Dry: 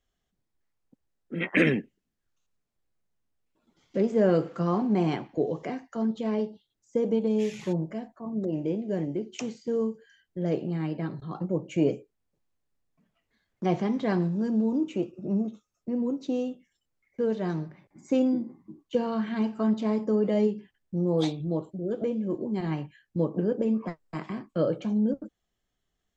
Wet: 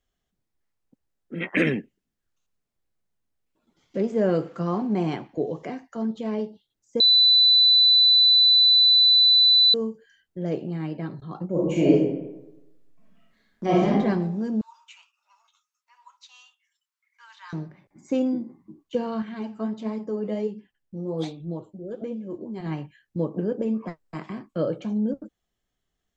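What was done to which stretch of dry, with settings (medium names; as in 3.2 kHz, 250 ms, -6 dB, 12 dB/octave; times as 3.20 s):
7.00–9.74 s: bleep 3.99 kHz -13 dBFS
11.51–13.90 s: reverb throw, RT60 0.96 s, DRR -6.5 dB
14.61–17.53 s: Chebyshev high-pass 930 Hz, order 6
19.22–22.66 s: flange 1.4 Hz, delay 3.3 ms, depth 6.8 ms, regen +53%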